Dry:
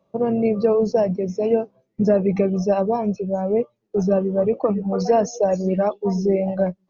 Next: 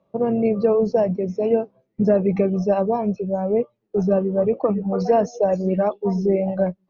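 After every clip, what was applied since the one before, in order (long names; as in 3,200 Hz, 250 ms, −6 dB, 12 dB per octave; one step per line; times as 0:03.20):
Bessel low-pass filter 3,500 Hz, order 2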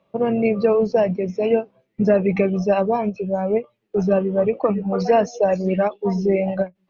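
parametric band 2,600 Hz +11.5 dB 1.7 octaves
every ending faded ahead of time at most 370 dB per second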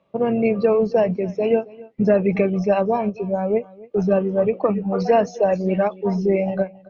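high-frequency loss of the air 53 metres
single-tap delay 273 ms −21.5 dB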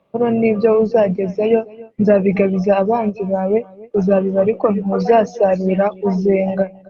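level +4 dB
Opus 32 kbit/s 48,000 Hz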